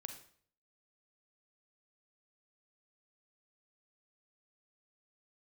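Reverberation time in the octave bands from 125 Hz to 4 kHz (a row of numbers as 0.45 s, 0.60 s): 0.70 s, 0.60 s, 0.60 s, 0.50 s, 0.50 s, 0.50 s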